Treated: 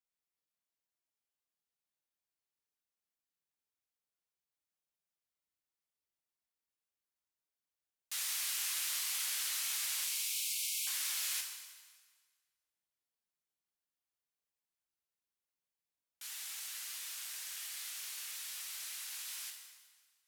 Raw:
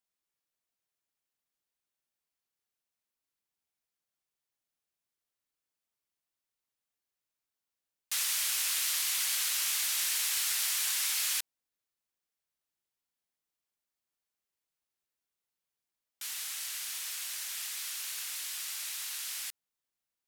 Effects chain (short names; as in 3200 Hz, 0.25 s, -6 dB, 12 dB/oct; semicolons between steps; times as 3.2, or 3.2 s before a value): 10.04–10.87 brick-wall FIR band-stop 250–2100 Hz; reverb RT60 1.6 s, pre-delay 8 ms, DRR 1.5 dB; gain -8 dB